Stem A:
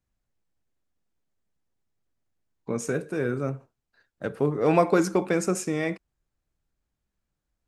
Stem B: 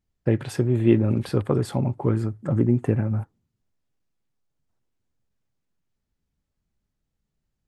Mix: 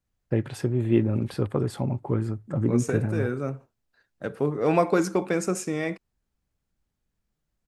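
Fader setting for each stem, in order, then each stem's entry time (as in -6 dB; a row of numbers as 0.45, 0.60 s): -1.0, -3.5 dB; 0.00, 0.05 s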